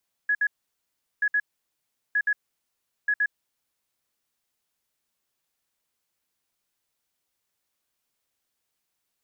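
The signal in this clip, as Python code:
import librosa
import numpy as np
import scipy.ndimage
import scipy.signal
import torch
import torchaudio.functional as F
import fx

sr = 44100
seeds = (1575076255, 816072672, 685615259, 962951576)

y = fx.beep_pattern(sr, wave='sine', hz=1680.0, on_s=0.06, off_s=0.06, beeps=2, pause_s=0.75, groups=4, level_db=-19.5)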